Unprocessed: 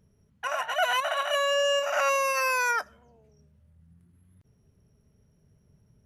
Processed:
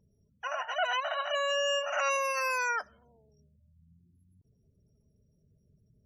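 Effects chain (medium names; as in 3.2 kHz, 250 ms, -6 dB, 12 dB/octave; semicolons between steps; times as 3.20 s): spectral gate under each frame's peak -25 dB strong; 1.50–2.17 s: tilt EQ +1.5 dB/octave; trim -4.5 dB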